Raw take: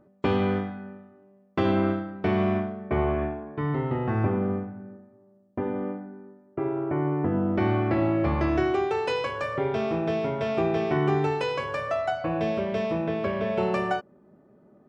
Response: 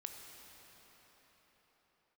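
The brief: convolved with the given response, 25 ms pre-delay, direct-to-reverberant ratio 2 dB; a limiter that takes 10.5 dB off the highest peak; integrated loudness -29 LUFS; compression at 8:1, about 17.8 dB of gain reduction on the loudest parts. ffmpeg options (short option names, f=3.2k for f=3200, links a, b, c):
-filter_complex "[0:a]acompressor=threshold=-39dB:ratio=8,alimiter=level_in=10.5dB:limit=-24dB:level=0:latency=1,volume=-10.5dB,asplit=2[a][b];[1:a]atrim=start_sample=2205,adelay=25[c];[b][c]afir=irnorm=-1:irlink=0,volume=1dB[d];[a][d]amix=inputs=2:normalize=0,volume=13dB"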